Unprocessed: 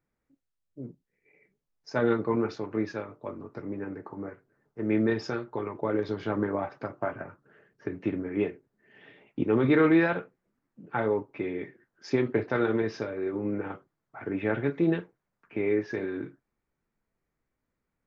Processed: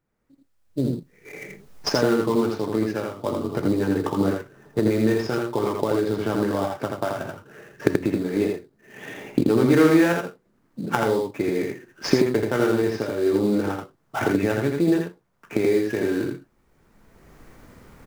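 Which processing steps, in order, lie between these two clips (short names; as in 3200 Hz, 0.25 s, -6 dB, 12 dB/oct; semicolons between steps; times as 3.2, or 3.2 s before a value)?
recorder AGC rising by 20 dB/s; in parallel at -5.5 dB: sample-rate reducer 4300 Hz, jitter 20%; on the sum: echo 82 ms -3.5 dB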